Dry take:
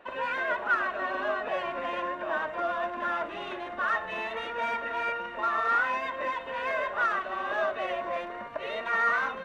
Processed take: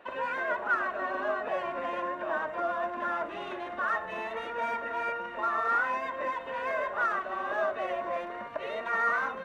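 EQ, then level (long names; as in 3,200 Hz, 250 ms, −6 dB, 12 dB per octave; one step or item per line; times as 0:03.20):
dynamic equaliser 3,300 Hz, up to −7 dB, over −45 dBFS, Q 0.91
low-shelf EQ 63 Hz −6.5 dB
0.0 dB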